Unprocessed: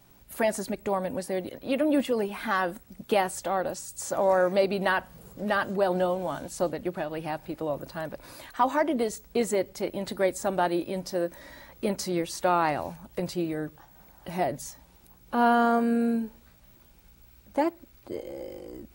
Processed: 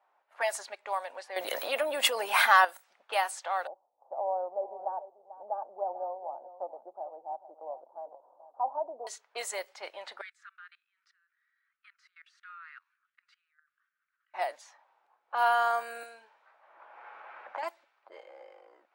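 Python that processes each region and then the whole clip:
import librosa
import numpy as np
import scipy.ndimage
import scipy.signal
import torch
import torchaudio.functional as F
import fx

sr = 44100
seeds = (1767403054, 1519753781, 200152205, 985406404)

y = fx.chain(x, sr, fx.low_shelf(hz=430.0, db=10.0),
    fx.env_flatten(amount_pct=70), at=(1.36, 2.65))
y = fx.chain(y, sr, fx.ellip_lowpass(hz=830.0, order=4, stop_db=60),
    fx.echo_single(ms=441, db=-14.5), at=(3.67, 9.07))
y = fx.chain(y, sr, fx.steep_highpass(hz=1300.0, slope=72),
    fx.level_steps(step_db=22), at=(10.21, 14.34))
y = fx.chain(y, sr, fx.peak_eq(hz=76.0, db=-9.5, octaves=2.3),
    fx.band_squash(depth_pct=100), at=(16.03, 17.63))
y = fx.env_lowpass(y, sr, base_hz=1000.0, full_db=-21.5)
y = scipy.signal.sosfilt(scipy.signal.butter(4, 740.0, 'highpass', fs=sr, output='sos'), y)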